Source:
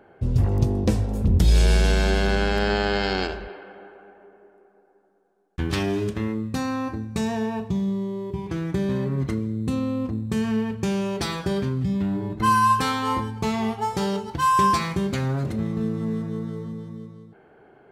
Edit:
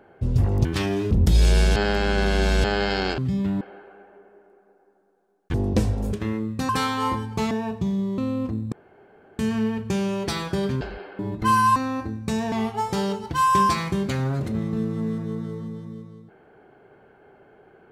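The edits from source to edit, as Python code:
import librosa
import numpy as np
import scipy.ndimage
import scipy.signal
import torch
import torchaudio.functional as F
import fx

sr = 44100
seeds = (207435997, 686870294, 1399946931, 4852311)

y = fx.edit(x, sr, fx.swap(start_s=0.65, length_s=0.59, other_s=5.62, other_length_s=0.46),
    fx.reverse_span(start_s=1.89, length_s=0.88),
    fx.swap(start_s=3.31, length_s=0.38, other_s=11.74, other_length_s=0.43),
    fx.swap(start_s=6.64, length_s=0.76, other_s=12.74, other_length_s=0.82),
    fx.cut(start_s=8.07, length_s=1.71),
    fx.insert_room_tone(at_s=10.32, length_s=0.67), tone=tone)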